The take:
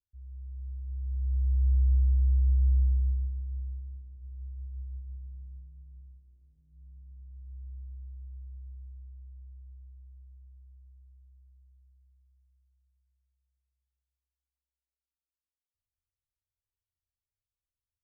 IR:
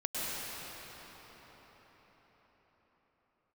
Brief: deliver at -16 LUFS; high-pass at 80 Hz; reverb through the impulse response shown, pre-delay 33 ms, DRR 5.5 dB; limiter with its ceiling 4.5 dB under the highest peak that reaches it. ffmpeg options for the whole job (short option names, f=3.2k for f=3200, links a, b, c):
-filter_complex "[0:a]highpass=80,alimiter=level_in=4dB:limit=-24dB:level=0:latency=1,volume=-4dB,asplit=2[a][b];[1:a]atrim=start_sample=2205,adelay=33[c];[b][c]afir=irnorm=-1:irlink=0,volume=-12.5dB[d];[a][d]amix=inputs=2:normalize=0,volume=18.5dB"